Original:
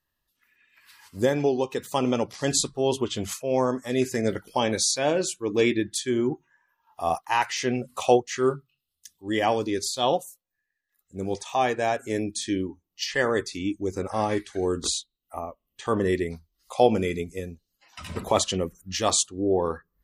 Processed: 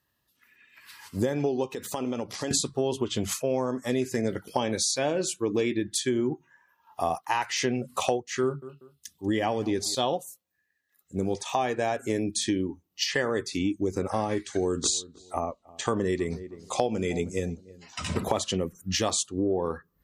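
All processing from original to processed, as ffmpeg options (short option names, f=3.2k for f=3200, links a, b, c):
-filter_complex "[0:a]asettb=1/sr,asplit=3[a][b][c];[a]atrim=end=1.744[d];[b]atrim=start=1.74:end=2.51,asetpts=PTS-STARTPTS,afade=t=in:d=0.004:c=qsin,afade=t=out:st=0.766:d=0.004:c=qsin,equalizer=f=140:w=6.9:g=-14,acompressor=threshold=-35dB:ratio=4:attack=3.2:release=140:knee=1:detection=peak[e];[c]atrim=start=2.506[f];[d][e]acrossfade=d=0.004:c1=hsin:c2=qsin[g];[g][f]acrossfade=d=0.004:c1=qsin:c2=hsin,asettb=1/sr,asplit=3[h][i][j];[h]atrim=end=8.434[k];[i]atrim=start=8.43:end=9.95,asetpts=PTS-STARTPTS,afade=t=in:d=0.004:c=qsin,afade=t=out:st=1.516:d=0.004:c=qsin,bass=f=250:g=3,treble=f=4k:g=-2,aecho=1:1:190|380:0.0668|0.014,atrim=end_sample=67032[l];[j]atrim=start=9.946[m];[k][l]acrossfade=d=0.004:c1=hsin:c2=qsin[n];[n][m]acrossfade=d=0.004:c1=qsin:c2=hsin,asettb=1/sr,asplit=3[o][p][q];[o]atrim=end=14.394[r];[p]atrim=start=14.39:end=18.14,asetpts=PTS-STARTPTS,afade=t=in:d=0.004:c=qsin,afade=t=out:st=3.746:d=0.004:c=qsin,lowpass=f=7.4k:t=q:w=2.1,asplit=2[s][t];[t]adelay=314,lowpass=f=920:p=1,volume=-22dB,asplit=2[u][v];[v]adelay=314,lowpass=f=920:p=1,volume=0.22[w];[s][u][w]amix=inputs=3:normalize=0,atrim=end_sample=165375[x];[q]atrim=start=18.136[y];[r][x]acrossfade=d=0.004:c1=hsin:c2=qsin[z];[z][y]acrossfade=d=0.004:c1=qsin:c2=hsin,highpass=85,lowshelf=f=400:g=4,acompressor=threshold=-28dB:ratio=6,volume=4.5dB"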